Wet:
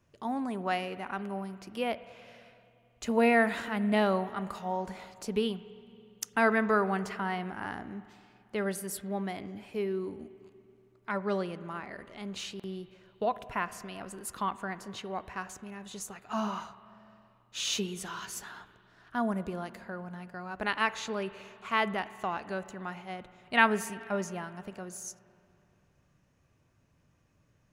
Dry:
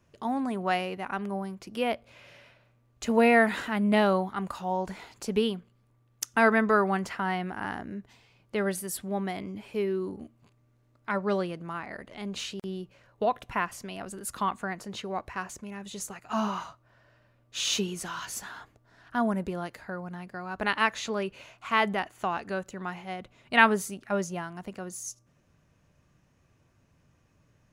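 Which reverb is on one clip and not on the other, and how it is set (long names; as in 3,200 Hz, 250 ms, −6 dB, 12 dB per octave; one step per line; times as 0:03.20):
spring reverb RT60 2.7 s, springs 47/56 ms, chirp 60 ms, DRR 15 dB
level −3.5 dB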